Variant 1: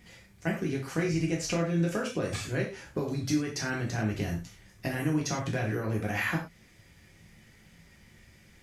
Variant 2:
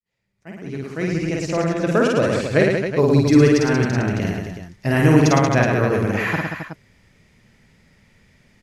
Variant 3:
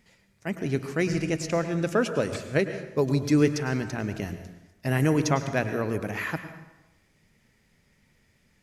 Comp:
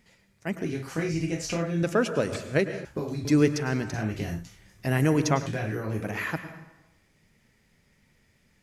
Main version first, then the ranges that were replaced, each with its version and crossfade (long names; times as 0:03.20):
3
0:00.65–0:01.83: punch in from 1
0:02.85–0:03.25: punch in from 1
0:03.94–0:04.86: punch in from 1
0:05.46–0:06.04: punch in from 1
not used: 2